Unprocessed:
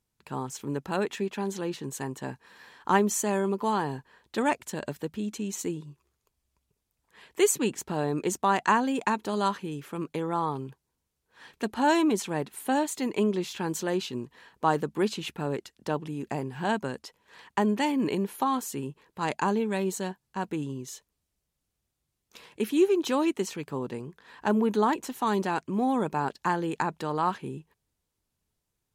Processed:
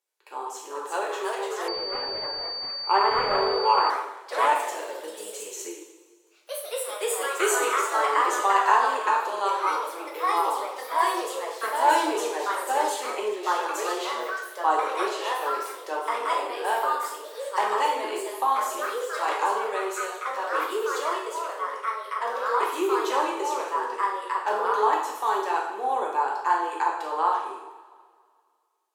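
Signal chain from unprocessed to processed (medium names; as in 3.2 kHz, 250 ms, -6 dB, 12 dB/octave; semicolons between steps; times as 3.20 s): dynamic bell 980 Hz, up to +6 dB, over -38 dBFS, Q 1.6; steep high-pass 360 Hz 48 dB/octave; reverberation, pre-delay 3 ms, DRR -3 dB; ever faster or slower copies 420 ms, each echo +2 st, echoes 3; 1.68–3.90 s: class-D stage that switches slowly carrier 4.6 kHz; trim -4.5 dB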